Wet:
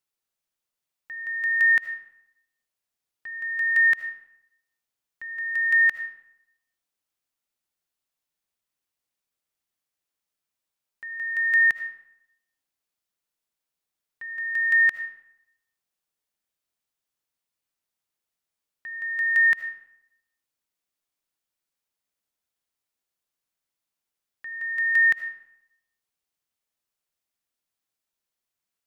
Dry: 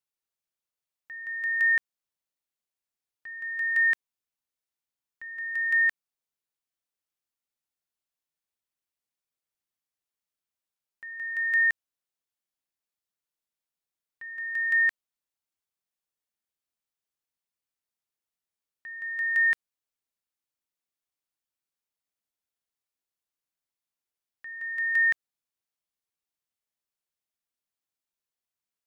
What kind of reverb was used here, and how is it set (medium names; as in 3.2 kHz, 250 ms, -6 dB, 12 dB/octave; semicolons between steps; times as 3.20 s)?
algorithmic reverb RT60 0.79 s, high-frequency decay 0.7×, pre-delay 35 ms, DRR 10.5 dB; trim +4 dB